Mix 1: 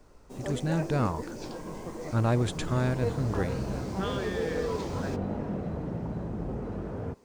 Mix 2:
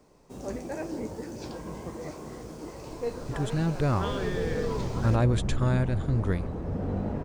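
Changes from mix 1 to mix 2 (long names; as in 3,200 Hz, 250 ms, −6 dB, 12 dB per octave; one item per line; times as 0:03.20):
speech: entry +2.90 s
second sound: entry +1.75 s
master: add low-shelf EQ 73 Hz +10.5 dB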